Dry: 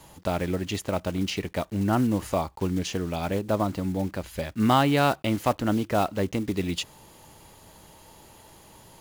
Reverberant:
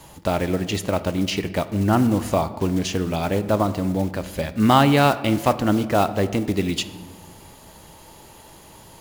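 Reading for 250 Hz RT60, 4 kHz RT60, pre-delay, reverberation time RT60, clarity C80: 2.0 s, 0.80 s, 5 ms, 1.5 s, 16.0 dB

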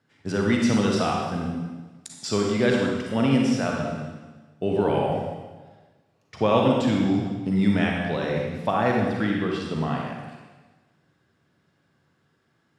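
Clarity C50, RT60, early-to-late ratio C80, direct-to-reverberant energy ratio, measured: 0.0 dB, 1.3 s, 2.5 dB, -1.0 dB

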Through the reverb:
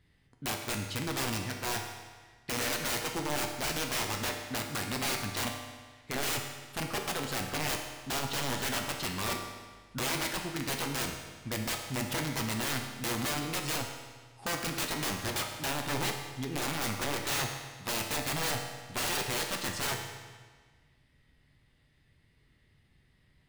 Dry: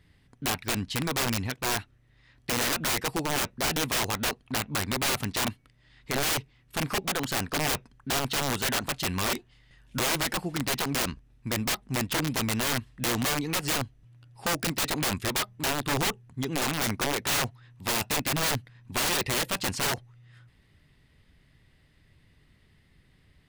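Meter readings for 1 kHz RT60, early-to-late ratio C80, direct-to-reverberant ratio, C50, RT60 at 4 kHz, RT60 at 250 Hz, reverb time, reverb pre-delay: 1.5 s, 6.5 dB, 2.0 dB, 5.0 dB, 1.4 s, 1.5 s, 1.5 s, 8 ms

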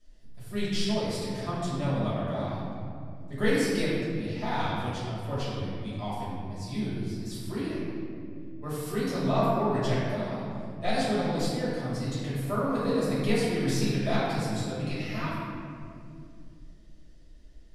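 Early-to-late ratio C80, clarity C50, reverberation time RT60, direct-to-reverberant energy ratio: -0.5 dB, -3.0 dB, 2.3 s, -11.5 dB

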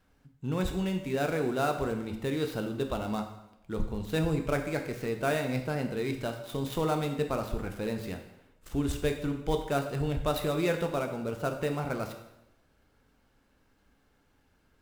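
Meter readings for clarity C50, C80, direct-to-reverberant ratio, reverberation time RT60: 8.5 dB, 10.5 dB, 4.5 dB, 0.85 s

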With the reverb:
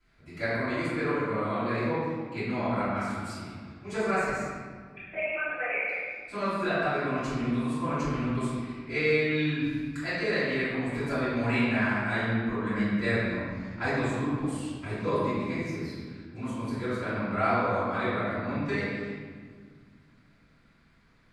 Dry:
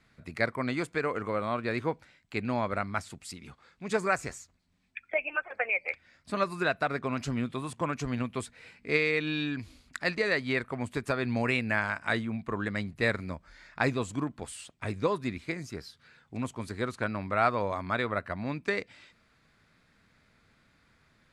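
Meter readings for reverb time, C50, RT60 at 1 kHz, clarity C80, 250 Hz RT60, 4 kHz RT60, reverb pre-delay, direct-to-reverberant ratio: 1.8 s, -3.0 dB, 1.6 s, -0.5 dB, 2.8 s, 1.1 s, 3 ms, -16.5 dB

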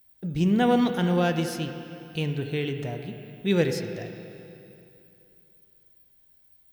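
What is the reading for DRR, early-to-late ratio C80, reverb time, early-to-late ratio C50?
6.0 dB, 7.5 dB, 2.8 s, 7.0 dB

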